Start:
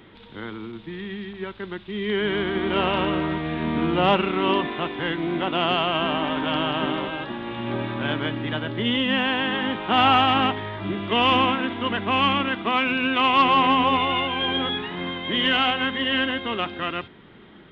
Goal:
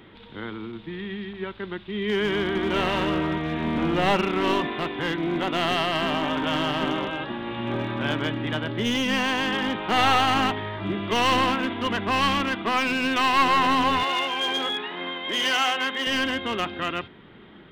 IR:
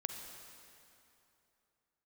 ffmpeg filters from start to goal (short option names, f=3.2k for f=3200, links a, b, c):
-filter_complex "[0:a]aeval=exprs='clip(val(0),-1,0.0891)':c=same,asettb=1/sr,asplit=3[a][b][c];[a]atrim=end=14.034[d];[b]atrim=start=14.03:end=16.07,asetpts=PTS-STARTPTS,afade=t=in:d=0.004:c=qsin,afade=t=out:st=2.036:d=0.004:c=qsin,highpass=360[e];[c]atrim=start=16.066[f];[d][e]acrossfade=d=0.004:c1=hsin:c2=qsin[g];[g][f]acrossfade=d=0.004:c1=qsin:c2=hsin"